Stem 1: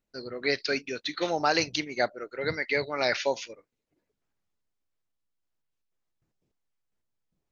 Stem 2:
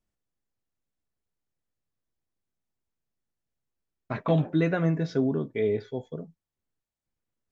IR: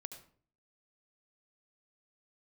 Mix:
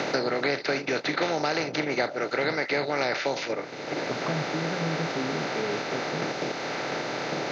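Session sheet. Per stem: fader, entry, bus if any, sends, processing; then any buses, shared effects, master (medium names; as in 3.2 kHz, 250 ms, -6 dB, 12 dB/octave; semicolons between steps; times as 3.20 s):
-3.0 dB, 0.00 s, no send, spectral levelling over time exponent 0.4; treble shelf 4 kHz -6 dB; three bands compressed up and down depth 100%
-1.0 dB, 0.00 s, no send, compression, threshold -29 dBFS, peak gain reduction 10.5 dB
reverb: none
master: resonant low shelf 110 Hz -10 dB, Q 1.5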